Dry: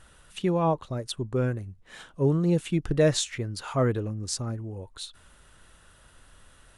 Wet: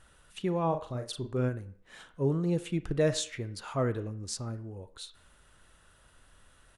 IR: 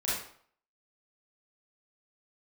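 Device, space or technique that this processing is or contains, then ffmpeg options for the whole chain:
filtered reverb send: -filter_complex "[0:a]asplit=2[a][b];[b]highpass=250,lowpass=3.4k[c];[1:a]atrim=start_sample=2205[d];[c][d]afir=irnorm=-1:irlink=0,volume=-19dB[e];[a][e]amix=inputs=2:normalize=0,asplit=3[f][g][h];[f]afade=t=out:st=0.71:d=0.02[i];[g]asplit=2[j][k];[k]adelay=40,volume=-6.5dB[l];[j][l]amix=inputs=2:normalize=0,afade=t=in:st=0.71:d=0.02,afade=t=out:st=1.48:d=0.02[m];[h]afade=t=in:st=1.48:d=0.02[n];[i][m][n]amix=inputs=3:normalize=0,volume=-5.5dB"

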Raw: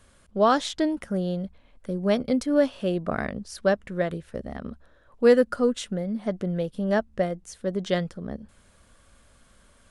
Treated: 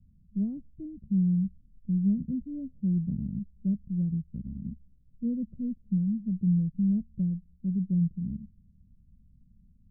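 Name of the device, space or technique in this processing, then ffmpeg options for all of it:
the neighbour's flat through the wall: -af "lowpass=f=190:w=0.5412,lowpass=f=190:w=1.3066,equalizer=f=180:t=o:w=0.97:g=7"

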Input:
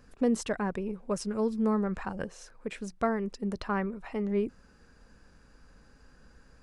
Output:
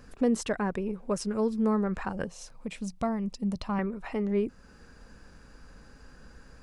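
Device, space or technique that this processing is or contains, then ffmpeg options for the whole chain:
parallel compression: -filter_complex "[0:a]asplit=2[a][b];[b]acompressor=threshold=-42dB:ratio=6,volume=-0.5dB[c];[a][c]amix=inputs=2:normalize=0,asettb=1/sr,asplit=3[d][e][f];[d]atrim=end=2.274[g];[e]atrim=start=2.27:end=3.79,asetpts=PTS-STARTPTS,afade=t=in:d=0.004:c=qsin,afade=t=out:st=1.516:d=0.004:c=qsin,equalizer=f=160:t=o:w=0.67:g=5,equalizer=f=400:t=o:w=0.67:g=-10,equalizer=f=1.6k:t=o:w=0.67:g=-12[h];[f]atrim=start=3.786[i];[g][h]acrossfade=d=0.004:c1=hsin:c2=qsin[j];[j][i]acrossfade=d=0.004:c1=qsin:c2=hsin"

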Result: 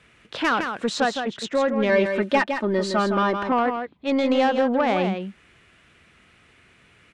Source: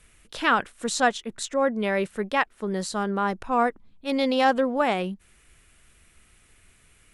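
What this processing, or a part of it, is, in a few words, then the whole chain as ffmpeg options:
AM radio: -filter_complex "[0:a]highpass=110,lowpass=3.6k,acompressor=threshold=-22dB:ratio=6,asoftclip=type=tanh:threshold=-19.5dB,asettb=1/sr,asplit=3[a][b][c];[a]atrim=end=1.894[d];[b]atrim=start=1.89:end=3.52,asetpts=PTS-STARTPTS,afade=t=in:d=0.004:c=qsin,afade=t=out:st=1.626:d=0.004:c=qsin,aecho=1:1:3.3:0.84,atrim=end_sample=71883[e];[c]atrim=start=3.516[f];[d][e]acrossfade=d=0.004:c1=hsin:c2=qsin[g];[g][f]acrossfade=d=0.004:c1=qsin:c2=hsin,aecho=1:1:162:0.447,volume=6.5dB"

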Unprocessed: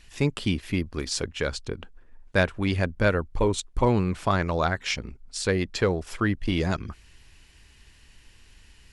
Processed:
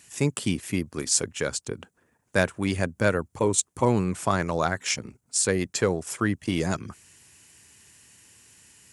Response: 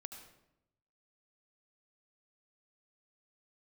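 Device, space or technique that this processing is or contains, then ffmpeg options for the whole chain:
budget condenser microphone: -af "highpass=f=100:w=0.5412,highpass=f=100:w=1.3066,highshelf=f=5.6k:t=q:w=1.5:g=10"

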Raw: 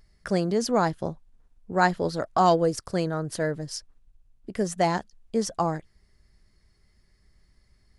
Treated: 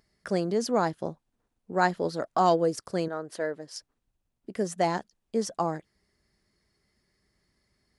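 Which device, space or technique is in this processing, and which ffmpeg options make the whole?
filter by subtraction: -filter_complex "[0:a]asettb=1/sr,asplit=3[a][b][c];[a]atrim=end=3.084[d];[b]atrim=start=3.08:end=3.76,asetpts=PTS-STARTPTS,afade=t=in:d=0.004:c=qsin,afade=t=out:st=0.676:d=0.004:c=qsin,bass=f=250:g=-13,treble=f=4k:g=-6[e];[c]atrim=start=3.756[f];[d][e]acrossfade=d=0.004:c1=hsin:c2=qsin[g];[g][f]acrossfade=d=0.004:c1=qsin:c2=hsin,asplit=2[h][i];[i]lowpass=300,volume=-1[j];[h][j]amix=inputs=2:normalize=0,volume=-3.5dB"

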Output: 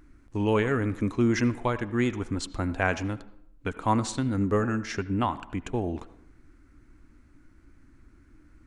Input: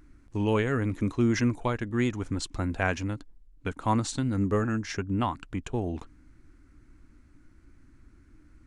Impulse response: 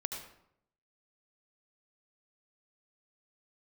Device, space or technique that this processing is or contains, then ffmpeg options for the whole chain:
filtered reverb send: -filter_complex "[0:a]asplit=2[a][b];[b]highpass=200,lowpass=3.3k[c];[1:a]atrim=start_sample=2205[d];[c][d]afir=irnorm=-1:irlink=0,volume=-10dB[e];[a][e]amix=inputs=2:normalize=0"

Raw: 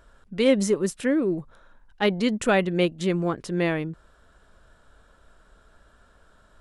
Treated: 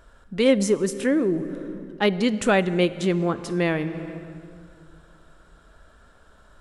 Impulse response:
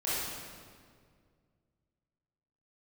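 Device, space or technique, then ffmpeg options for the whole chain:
ducked reverb: -filter_complex "[0:a]asplit=3[a][b][c];[1:a]atrim=start_sample=2205[d];[b][d]afir=irnorm=-1:irlink=0[e];[c]apad=whole_len=291269[f];[e][f]sidechaincompress=threshold=-28dB:ratio=12:attack=22:release=408,volume=-12.5dB[g];[a][g]amix=inputs=2:normalize=0,volume=1dB"

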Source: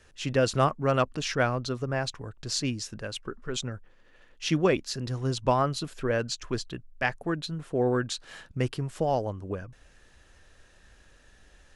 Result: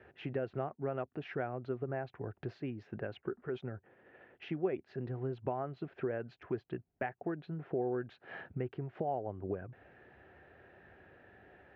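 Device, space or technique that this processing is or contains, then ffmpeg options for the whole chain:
bass amplifier: -af "acompressor=threshold=-39dB:ratio=6,highpass=f=86:w=0.5412,highpass=f=86:w=1.3066,equalizer=f=380:t=q:w=4:g=8,equalizer=f=730:t=q:w=4:g=8,equalizer=f=1.1k:t=q:w=4:g=-6,lowpass=f=2.2k:w=0.5412,lowpass=f=2.2k:w=1.3066,volume=1.5dB"

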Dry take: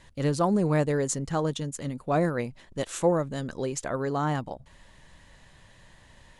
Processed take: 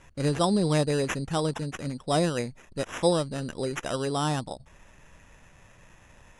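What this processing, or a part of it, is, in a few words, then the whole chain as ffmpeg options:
crushed at another speed: -af "asetrate=88200,aresample=44100,acrusher=samples=5:mix=1:aa=0.000001,asetrate=22050,aresample=44100"

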